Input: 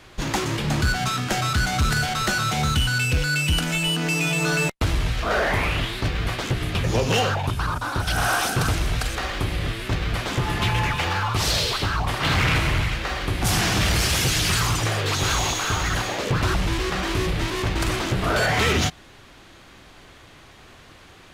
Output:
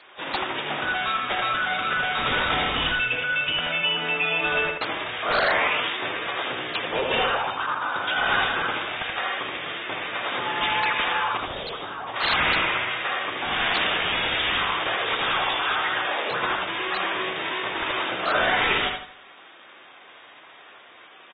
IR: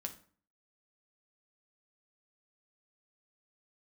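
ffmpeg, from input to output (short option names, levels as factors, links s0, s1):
-filter_complex "[0:a]highpass=560,highshelf=f=9200:g=6,asettb=1/sr,asplit=3[s0][s1][s2];[s0]atrim=end=2.184[s3];[s1]atrim=start=2.18:end=2.92,asetpts=PTS-STARTPTS,afade=t=in:d=0.004:c=qsin,afade=t=out:st=0.736:d=0.004:c=qsin,acontrast=59[s4];[s2]atrim=start=2.916[s5];[s3][s4]acrossfade=d=0.004:c1=hsin:c2=qsin[s6];[s6][s5]acrossfade=d=0.004:c1=qsin:c2=hsin,aeval=exprs='(mod(5.62*val(0)+1,2)-1)/5.62':c=same,asettb=1/sr,asplit=3[s7][s8][s9];[s7]atrim=end=11.374[s10];[s8]atrim=start=11.37:end=12.16,asetpts=PTS-STARTPTS,afade=t=in:d=0.004:c=qsin,afade=t=out:st=0.786:d=0.004:c=qsin,equalizer=f=2300:w=0.4:g=-11.5[s11];[s9]atrim=start=12.156[s12];[s10][s11]acrossfade=d=0.004:c1=hsin:c2=qsin[s13];[s13][s12]acrossfade=d=0.004:c1=qsin:c2=hsin,asplit=2[s14][s15];[s15]adelay=80,lowpass=f=3900:p=1,volume=0.668,asplit=2[s16][s17];[s17]adelay=80,lowpass=f=3900:p=1,volume=0.4,asplit=2[s18][s19];[s19]adelay=80,lowpass=f=3900:p=1,volume=0.4,asplit=2[s20][s21];[s21]adelay=80,lowpass=f=3900:p=1,volume=0.4,asplit=2[s22][s23];[s23]adelay=80,lowpass=f=3900:p=1,volume=0.4[s24];[s14][s16][s18][s20][s22][s24]amix=inputs=6:normalize=0" -ar 32000 -c:a aac -b:a 16k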